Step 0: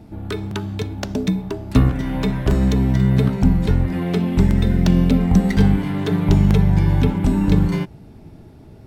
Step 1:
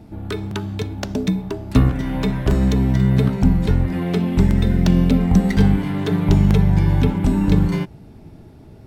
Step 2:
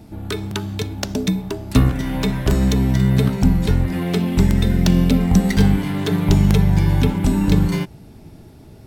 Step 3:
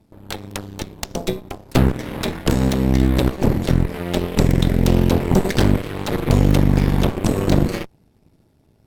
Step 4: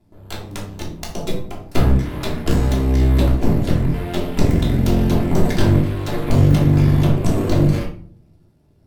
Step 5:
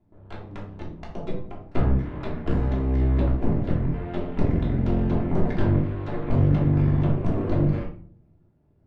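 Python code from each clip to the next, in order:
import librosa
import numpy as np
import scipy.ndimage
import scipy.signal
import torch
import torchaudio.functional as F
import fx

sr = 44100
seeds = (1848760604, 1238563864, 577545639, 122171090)

y1 = x
y2 = fx.high_shelf(y1, sr, hz=3600.0, db=9.5)
y3 = fx.cheby_harmonics(y2, sr, harmonics=(4, 5, 7, 8), levels_db=(-6, -28, -18, -15), full_scale_db=-1.0)
y3 = y3 * 10.0 ** (-6.0 / 20.0)
y4 = fx.room_shoebox(y3, sr, seeds[0], volume_m3=450.0, walls='furnished', distance_m=3.1)
y4 = y4 * 10.0 ** (-6.5 / 20.0)
y5 = scipy.signal.sosfilt(scipy.signal.butter(2, 1900.0, 'lowpass', fs=sr, output='sos'), y4)
y5 = y5 * 10.0 ** (-6.5 / 20.0)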